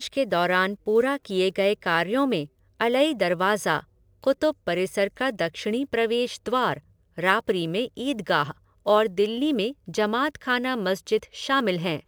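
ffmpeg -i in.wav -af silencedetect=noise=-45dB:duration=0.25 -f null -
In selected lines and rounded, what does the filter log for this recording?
silence_start: 2.47
silence_end: 2.80 | silence_duration: 0.33
silence_start: 3.83
silence_end: 4.23 | silence_duration: 0.39
silence_start: 6.79
silence_end: 7.17 | silence_duration: 0.38
silence_start: 8.52
silence_end: 8.86 | silence_duration: 0.34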